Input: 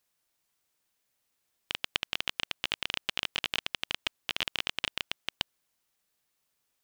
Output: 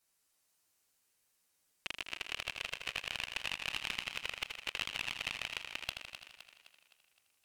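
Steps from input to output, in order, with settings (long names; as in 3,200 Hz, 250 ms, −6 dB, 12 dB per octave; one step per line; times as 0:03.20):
parametric band 10,000 Hz +5 dB 1.4 octaves
notch filter 3,700 Hz, Q 19
brickwall limiter −15 dBFS, peak gain reduction 11 dB
flanger swept by the level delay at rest 10.8 ms, full sweep at −32 dBFS
on a send: feedback echo with a high-pass in the loop 237 ms, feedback 49%, high-pass 200 Hz, level −9 dB
on the sum: wrong playback speed 48 kHz file played as 44.1 kHz
feedback echo with a swinging delay time 81 ms, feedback 58%, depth 60 cents, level −7.5 dB
level +1 dB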